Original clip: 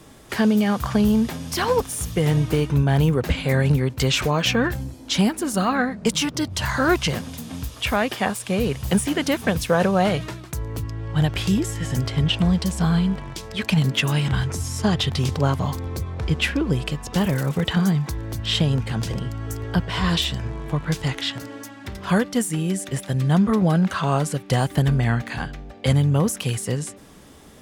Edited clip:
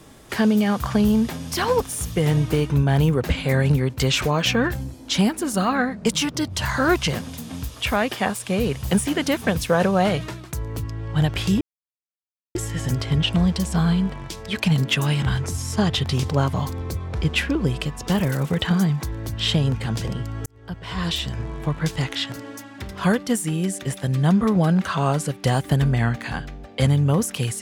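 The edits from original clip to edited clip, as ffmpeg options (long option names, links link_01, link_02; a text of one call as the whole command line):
ffmpeg -i in.wav -filter_complex "[0:a]asplit=3[link_01][link_02][link_03];[link_01]atrim=end=11.61,asetpts=PTS-STARTPTS,afade=type=out:start_time=11.606:duration=0.004:curve=hsin,apad=pad_dur=0.94[link_04];[link_02]atrim=start=11.61:end=19.52,asetpts=PTS-STARTPTS,afade=type=in:duration=0.004:curve=hsin,afade=type=out:start_time=7.906:duration=0.004:curve=hsin[link_05];[link_03]atrim=start=19.52,asetpts=PTS-STARTPTS,afade=type=in:duration=0.96[link_06];[link_04][link_05][link_06]concat=n=3:v=0:a=1" out.wav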